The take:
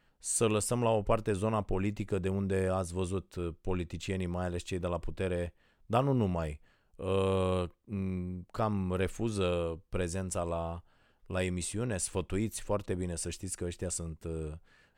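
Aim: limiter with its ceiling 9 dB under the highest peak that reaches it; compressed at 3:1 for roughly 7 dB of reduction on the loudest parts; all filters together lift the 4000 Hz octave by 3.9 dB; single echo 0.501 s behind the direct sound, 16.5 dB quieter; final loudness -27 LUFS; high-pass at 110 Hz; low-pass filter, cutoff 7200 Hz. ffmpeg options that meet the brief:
-af "highpass=110,lowpass=7.2k,equalizer=f=4k:t=o:g=5.5,acompressor=threshold=-32dB:ratio=3,alimiter=level_in=4.5dB:limit=-24dB:level=0:latency=1,volume=-4.5dB,aecho=1:1:501:0.15,volume=13.5dB"

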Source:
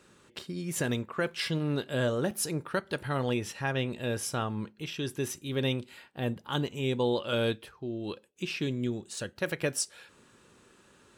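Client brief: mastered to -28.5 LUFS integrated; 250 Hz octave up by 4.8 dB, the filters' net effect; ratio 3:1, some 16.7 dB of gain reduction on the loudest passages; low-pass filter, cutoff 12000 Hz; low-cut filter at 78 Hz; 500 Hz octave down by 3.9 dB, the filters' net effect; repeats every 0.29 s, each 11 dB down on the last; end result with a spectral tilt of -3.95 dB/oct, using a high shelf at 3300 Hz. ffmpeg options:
-af "highpass=78,lowpass=12k,equalizer=f=250:t=o:g=8,equalizer=f=500:t=o:g=-8,highshelf=f=3.3k:g=7,acompressor=threshold=-46dB:ratio=3,aecho=1:1:290|580|870:0.282|0.0789|0.0221,volume=16dB"

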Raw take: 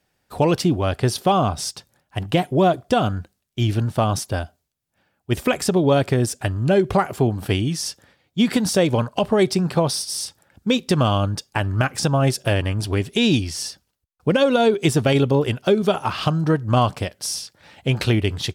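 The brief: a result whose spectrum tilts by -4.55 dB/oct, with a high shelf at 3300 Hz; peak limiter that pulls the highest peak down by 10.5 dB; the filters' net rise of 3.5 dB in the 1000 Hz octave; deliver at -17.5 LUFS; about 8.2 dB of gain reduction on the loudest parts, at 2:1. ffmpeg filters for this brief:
-af "equalizer=f=1k:t=o:g=4.5,highshelf=f=3.3k:g=4,acompressor=threshold=-27dB:ratio=2,volume=12dB,alimiter=limit=-7dB:level=0:latency=1"

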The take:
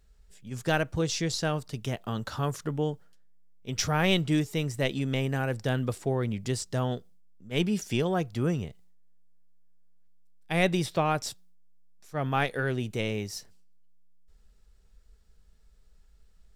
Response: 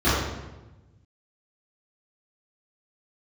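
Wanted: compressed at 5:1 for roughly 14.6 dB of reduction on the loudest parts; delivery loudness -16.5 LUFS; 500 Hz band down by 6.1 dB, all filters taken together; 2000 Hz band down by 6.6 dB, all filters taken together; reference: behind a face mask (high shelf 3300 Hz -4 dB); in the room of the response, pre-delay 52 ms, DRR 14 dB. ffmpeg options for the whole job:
-filter_complex "[0:a]equalizer=f=500:t=o:g=-7.5,equalizer=f=2k:t=o:g=-7,acompressor=threshold=-41dB:ratio=5,asplit=2[a][b];[1:a]atrim=start_sample=2205,adelay=52[c];[b][c]afir=irnorm=-1:irlink=0,volume=-33.5dB[d];[a][d]amix=inputs=2:normalize=0,highshelf=f=3.3k:g=-4,volume=27.5dB"

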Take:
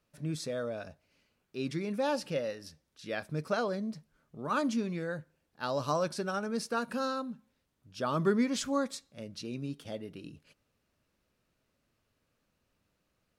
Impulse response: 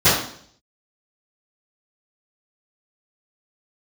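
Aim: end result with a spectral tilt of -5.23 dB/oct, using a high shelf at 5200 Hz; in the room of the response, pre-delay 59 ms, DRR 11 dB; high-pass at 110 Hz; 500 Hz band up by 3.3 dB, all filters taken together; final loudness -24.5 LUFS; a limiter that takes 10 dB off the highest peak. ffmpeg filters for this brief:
-filter_complex "[0:a]highpass=110,equalizer=f=500:t=o:g=4,highshelf=f=5.2k:g=-3.5,alimiter=limit=-24dB:level=0:latency=1,asplit=2[a][b];[1:a]atrim=start_sample=2205,adelay=59[c];[b][c]afir=irnorm=-1:irlink=0,volume=-34.5dB[d];[a][d]amix=inputs=2:normalize=0,volume=10.5dB"

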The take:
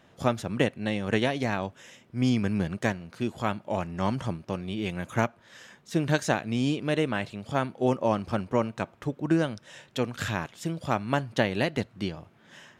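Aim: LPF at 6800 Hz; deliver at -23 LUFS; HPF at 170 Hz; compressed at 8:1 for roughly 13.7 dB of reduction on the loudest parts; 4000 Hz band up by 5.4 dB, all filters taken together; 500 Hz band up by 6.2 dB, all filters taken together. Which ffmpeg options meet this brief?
-af "highpass=170,lowpass=6.8k,equalizer=f=500:t=o:g=7.5,equalizer=f=4k:t=o:g=7.5,acompressor=threshold=-29dB:ratio=8,volume=12.5dB"

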